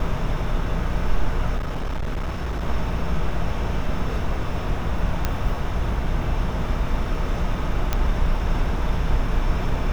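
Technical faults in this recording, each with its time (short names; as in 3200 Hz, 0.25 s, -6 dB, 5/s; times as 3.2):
1.57–2.63 clipped -22 dBFS
5.25 pop -8 dBFS
7.93 pop -8 dBFS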